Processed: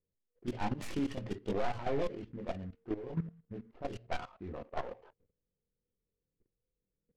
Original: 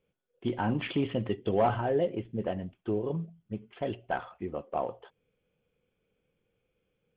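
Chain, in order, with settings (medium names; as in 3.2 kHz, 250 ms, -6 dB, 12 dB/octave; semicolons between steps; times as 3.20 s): tracing distortion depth 0.3 ms; band-stop 1.6 kHz, Q 26; de-hum 229.8 Hz, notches 2; chorus voices 4, 0.37 Hz, delay 23 ms, depth 2.5 ms; level-controlled noise filter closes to 440 Hz, open at -30.5 dBFS; level held to a coarse grid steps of 16 dB; peak limiter -31 dBFS, peak gain reduction 9 dB; bass shelf 80 Hz +6 dB; delay time shaken by noise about 1.3 kHz, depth 0.03 ms; trim +5 dB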